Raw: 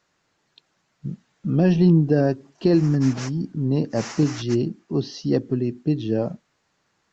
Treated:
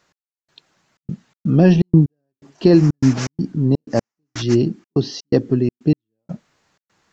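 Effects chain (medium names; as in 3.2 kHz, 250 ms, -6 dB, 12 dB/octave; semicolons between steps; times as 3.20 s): trance gate "x...xxxx.xx.xxx." 124 bpm -60 dB; trim +6 dB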